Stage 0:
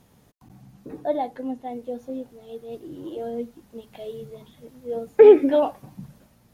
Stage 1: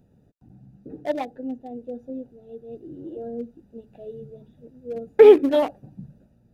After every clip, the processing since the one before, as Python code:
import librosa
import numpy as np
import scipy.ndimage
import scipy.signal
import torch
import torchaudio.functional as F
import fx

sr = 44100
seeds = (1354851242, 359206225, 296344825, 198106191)

y = fx.wiener(x, sr, points=41)
y = fx.high_shelf(y, sr, hz=2600.0, db=10.0)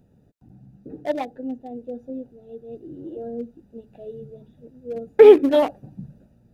y = fx.rider(x, sr, range_db=3, speed_s=0.5)
y = y * librosa.db_to_amplitude(4.0)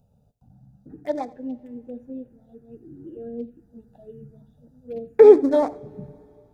y = fx.env_phaser(x, sr, low_hz=310.0, high_hz=2900.0, full_db=-23.0)
y = y + 10.0 ** (-21.0 / 20.0) * np.pad(y, (int(85 * sr / 1000.0), 0))[:len(y)]
y = fx.rev_double_slope(y, sr, seeds[0], early_s=0.26, late_s=3.1, knee_db=-18, drr_db=16.5)
y = y * librosa.db_to_amplitude(-1.0)